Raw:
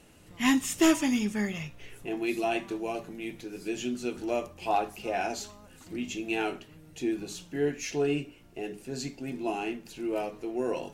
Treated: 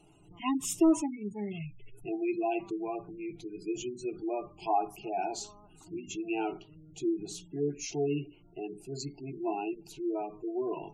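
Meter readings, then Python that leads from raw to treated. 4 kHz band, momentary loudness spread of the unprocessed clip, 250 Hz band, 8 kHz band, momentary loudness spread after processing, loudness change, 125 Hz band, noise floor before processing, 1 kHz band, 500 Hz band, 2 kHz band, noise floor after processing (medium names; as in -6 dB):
-8.0 dB, 13 LU, -2.5 dB, -3.0 dB, 11 LU, -3.0 dB, -1.5 dB, -54 dBFS, -1.5 dB, -2.5 dB, -11.5 dB, -58 dBFS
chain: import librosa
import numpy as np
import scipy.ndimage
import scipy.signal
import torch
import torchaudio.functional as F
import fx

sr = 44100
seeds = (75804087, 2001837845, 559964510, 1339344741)

y = fx.spec_gate(x, sr, threshold_db=-20, keep='strong')
y = fx.fixed_phaser(y, sr, hz=350.0, stages=8)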